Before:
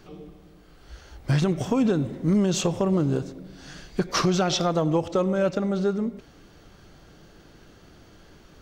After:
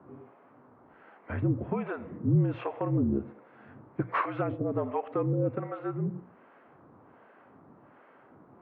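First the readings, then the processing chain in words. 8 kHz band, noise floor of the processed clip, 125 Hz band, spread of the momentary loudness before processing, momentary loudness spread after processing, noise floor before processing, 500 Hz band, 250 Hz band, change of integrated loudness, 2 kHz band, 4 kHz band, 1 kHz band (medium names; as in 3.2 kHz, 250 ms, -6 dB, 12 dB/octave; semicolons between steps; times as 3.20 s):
under -40 dB, -58 dBFS, -3.5 dB, 11 LU, 10 LU, -52 dBFS, -8.0 dB, -7.5 dB, -6.5 dB, -5.5 dB, under -25 dB, -4.5 dB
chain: mistuned SSB -52 Hz 180–2300 Hz; harmonic tremolo 1.3 Hz, depth 100%, crossover 490 Hz; hum notches 60/120/180 Hz; band noise 190–1200 Hz -60 dBFS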